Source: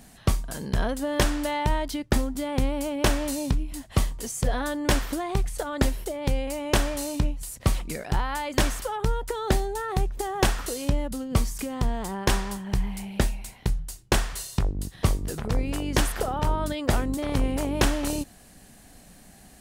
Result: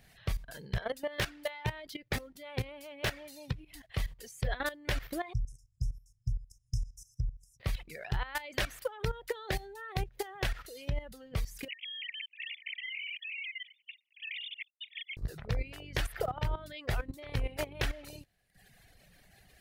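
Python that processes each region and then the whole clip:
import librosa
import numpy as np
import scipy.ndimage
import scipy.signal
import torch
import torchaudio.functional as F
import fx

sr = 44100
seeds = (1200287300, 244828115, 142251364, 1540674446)

y = fx.chain(x, sr, fx.highpass(hz=87.0, slope=12),
    fx.tube_stage(drive_db=20.0, bias=0.3), at=(0.77, 3.75))
y = fx.chain(y, sr, fx.brickwall_bandstop(low_hz=150.0, high_hz=5000.0),
    fx.air_absorb(metres=74.0),
    fx.clip_hard(threshold_db=-16.0), at=(5.33, 7.6))
y = fx.chain(y, sr, fx.low_shelf(hz=81.0, db=-10.5),
    fx.hum_notches(base_hz=60, count=5), at=(8.51, 10.31))
y = fx.chain(y, sr, fx.sine_speech(),
    fx.steep_highpass(hz=2100.0, slope=96),
    fx.over_compress(threshold_db=-40.0, ratio=-0.5), at=(11.68, 15.17))
y = fx.dereverb_blind(y, sr, rt60_s=1.1)
y = fx.level_steps(y, sr, step_db=15)
y = fx.graphic_eq(y, sr, hz=(125, 250, 500, 1000, 2000, 4000, 8000), db=(5, -11, 3, -6, 7, 3, -9))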